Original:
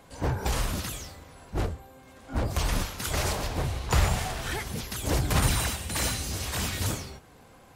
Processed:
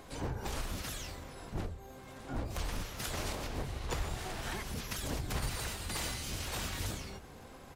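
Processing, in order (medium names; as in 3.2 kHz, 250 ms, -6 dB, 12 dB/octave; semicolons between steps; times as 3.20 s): hum notches 60/120/180 Hz; compression 3:1, threshold -40 dBFS, peak gain reduction 15.5 dB; harmony voices -12 st -2 dB, +4 st -16 dB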